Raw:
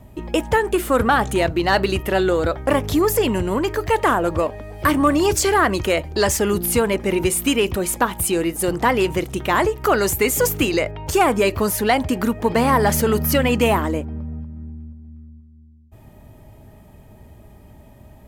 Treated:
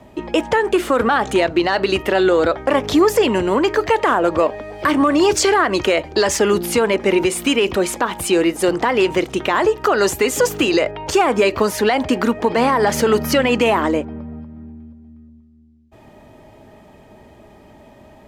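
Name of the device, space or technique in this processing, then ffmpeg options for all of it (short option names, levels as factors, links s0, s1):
DJ mixer with the lows and highs turned down: -filter_complex "[0:a]asettb=1/sr,asplit=3[s0][s1][s2];[s0]atrim=end=9.574[s3];[s1]atrim=start=9.57:end=10.96,asetpts=PTS-STARTPTS,afade=t=in:d=0.004:c=qsin,afade=t=out:st=1.386:d=0.004:c=qsin,bandreject=f=2200:w=12[s4];[s2]atrim=start=10.956[s5];[s3][s4]acrossfade=d=0.004:c1=hsin:c2=qsin[s6];[s6][s5]acrossfade=d=0.004:c1=qsin:c2=hsin,acrossover=split=220 7000:gain=0.2 1 0.158[s7][s8][s9];[s7][s8][s9]amix=inputs=3:normalize=0,alimiter=limit=0.237:level=0:latency=1:release=102,volume=2.11"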